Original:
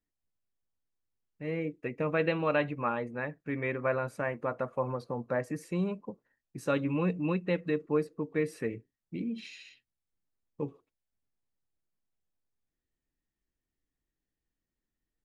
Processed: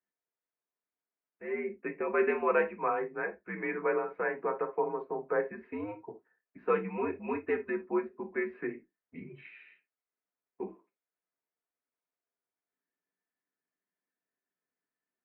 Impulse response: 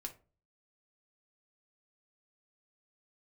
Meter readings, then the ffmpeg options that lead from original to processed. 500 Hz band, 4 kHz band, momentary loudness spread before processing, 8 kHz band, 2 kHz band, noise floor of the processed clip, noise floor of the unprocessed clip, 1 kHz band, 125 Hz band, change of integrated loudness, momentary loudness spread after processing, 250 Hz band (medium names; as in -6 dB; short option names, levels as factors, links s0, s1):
+0.5 dB, under -15 dB, 12 LU, under -20 dB, +0.5 dB, under -85 dBFS, under -85 dBFS, +2.0 dB, -14.5 dB, -0.5 dB, 18 LU, -5.0 dB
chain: -filter_complex "[1:a]atrim=start_sample=2205,atrim=end_sample=3969[s0];[0:a][s0]afir=irnorm=-1:irlink=0,highpass=f=400:t=q:w=0.5412,highpass=f=400:t=q:w=1.307,lowpass=f=2400:t=q:w=0.5176,lowpass=f=2400:t=q:w=0.7071,lowpass=f=2400:t=q:w=1.932,afreqshift=-88,volume=1.78"